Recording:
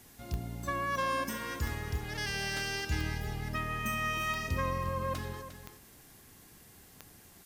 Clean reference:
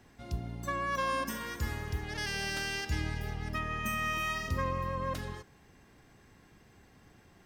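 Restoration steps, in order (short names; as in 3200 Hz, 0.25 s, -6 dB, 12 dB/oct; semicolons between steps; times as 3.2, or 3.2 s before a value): de-click; noise print and reduce 6 dB; inverse comb 0.353 s -11.5 dB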